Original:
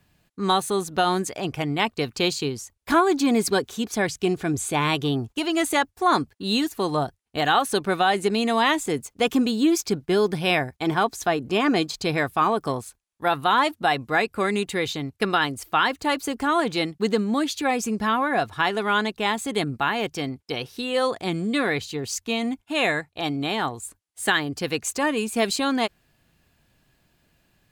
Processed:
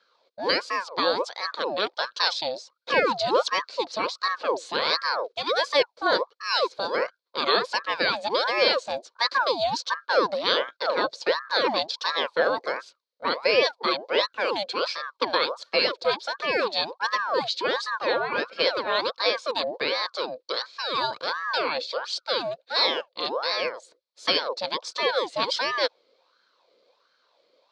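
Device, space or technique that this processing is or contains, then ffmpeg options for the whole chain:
voice changer toy: -af "aeval=exprs='val(0)*sin(2*PI*940*n/s+940*0.6/1.4*sin(2*PI*1.4*n/s))':channel_layout=same,highpass=510,equalizer=frequency=510:width_type=q:width=4:gain=10,equalizer=frequency=780:width_type=q:width=4:gain=-9,equalizer=frequency=1300:width_type=q:width=4:gain=-5,equalizer=frequency=1900:width_type=q:width=4:gain=-9,equalizer=frequency=2800:width_type=q:width=4:gain=-7,equalizer=frequency=4300:width_type=q:width=4:gain=9,lowpass=frequency=4800:width=0.5412,lowpass=frequency=4800:width=1.3066,volume=4dB"

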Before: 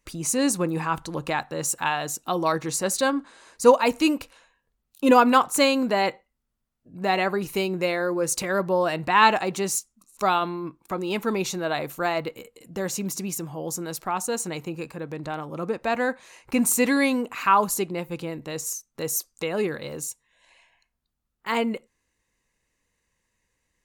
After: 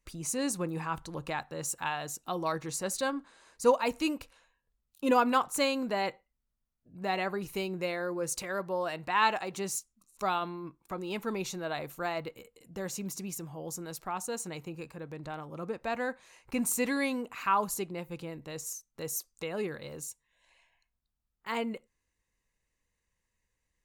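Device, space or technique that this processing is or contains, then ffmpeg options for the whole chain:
low shelf boost with a cut just above: -filter_complex "[0:a]asettb=1/sr,asplit=3[link_01][link_02][link_03];[link_01]atrim=end=8.404[link_04];[link_02]atrim=start=8.4:end=9.54,asetpts=PTS-STARTPTS,afade=type=in:duration=0.004:curve=qsin,afade=type=out:start_time=1.136:duration=0.004:curve=qsin,lowshelf=frequency=270:gain=-7[link_05];[link_03]atrim=start=9.536[link_06];[link_04][link_05]acrossfade=duration=0.004:curve1=hsin:curve2=qsin[link_07];[link_07][link_06]acrossfade=duration=0.004:curve1=qsin:curve2=hsin,lowshelf=frequency=87:gain=7,equalizer=frequency=280:width_type=o:width=0.77:gain=-2,volume=-8.5dB"

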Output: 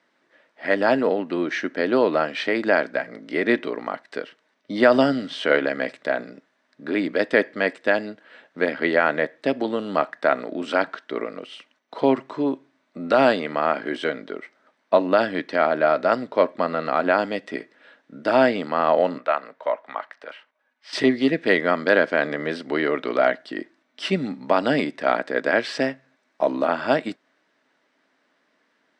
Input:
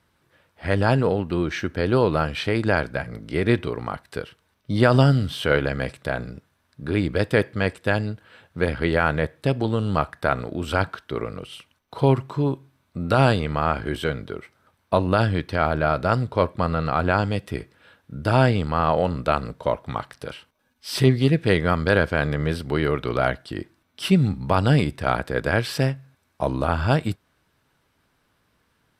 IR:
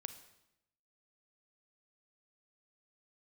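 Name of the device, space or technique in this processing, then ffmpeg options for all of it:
television speaker: -filter_complex "[0:a]asettb=1/sr,asplit=3[link_01][link_02][link_03];[link_01]atrim=end=19.184[link_04];[link_02]atrim=start=19.18:end=20.93,asetpts=PTS-STARTPTS,afade=type=in:duration=0.004:curve=qsin,afade=type=out:start_time=1.746:duration=0.004:curve=qsin,acrossover=split=600 2800:gain=0.178 1 0.251[link_05][link_06][link_07];[link_05][link_06][link_07]amix=inputs=3:normalize=0[link_08];[link_03]atrim=start=20.926[link_09];[link_04][link_08]acrossfade=duration=0.004:curve1=hsin:curve2=qsin[link_10];[link_10][link_09]acrossfade=duration=0.004:curve1=qsin:curve2=hsin,highpass=frequency=230:width=0.5412,highpass=frequency=230:width=1.3066,equalizer=frequency=270:width_type=q:width=4:gain=5,equalizer=frequency=620:width_type=q:width=4:gain=7,equalizer=frequency=1900:width_type=q:width=4:gain=8,lowpass=frequency=7000:width=0.5412,lowpass=frequency=7000:width=1.3066,volume=-1dB"

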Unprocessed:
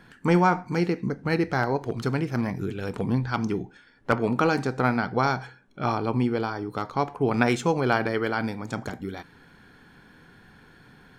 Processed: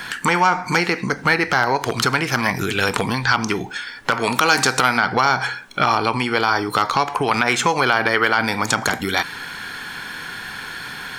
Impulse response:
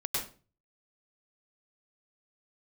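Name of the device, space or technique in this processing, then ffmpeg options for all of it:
mastering chain: -filter_complex "[0:a]equalizer=frequency=1000:width_type=o:width=0.77:gain=2.5,acrossover=split=730|2100[link_01][link_02][link_03];[link_01]acompressor=threshold=-27dB:ratio=4[link_04];[link_02]acompressor=threshold=-29dB:ratio=4[link_05];[link_03]acompressor=threshold=-46dB:ratio=4[link_06];[link_04][link_05][link_06]amix=inputs=3:normalize=0,acompressor=threshold=-32dB:ratio=2.5,asoftclip=type=tanh:threshold=-20dB,tiltshelf=frequency=910:gain=-10,alimiter=level_in=21.5dB:limit=-1dB:release=50:level=0:latency=1,asettb=1/sr,asplit=3[link_07][link_08][link_09];[link_07]atrim=end=4.134[link_10];[link_08]atrim=start=4.13:end=4.98,asetpts=PTS-STARTPTS,afade=type=in:duration=0.004:curve=qsin,afade=type=out:start_time=0.846:duration=0.004:curve=qsin,highshelf=frequency=3600:gain=10[link_11];[link_09]atrim=start=4.976[link_12];[link_10][link_11]acrossfade=duration=0.004:curve1=hsin:curve2=qsin[link_13];[link_13][link_12]acrossfade=duration=0.004:curve1=qsin:curve2=hsin,volume=-2.5dB"

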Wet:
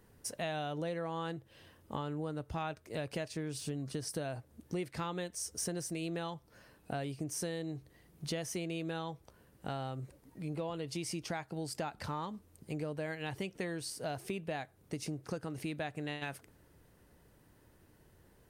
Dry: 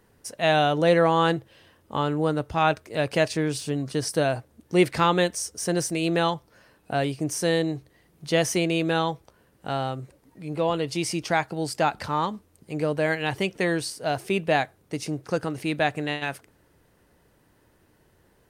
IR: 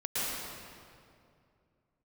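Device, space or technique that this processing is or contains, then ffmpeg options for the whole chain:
ASMR close-microphone chain: -af "lowshelf=frequency=240:gain=5.5,acompressor=threshold=-31dB:ratio=6,highshelf=frequency=7400:gain=4.5,volume=-5dB"

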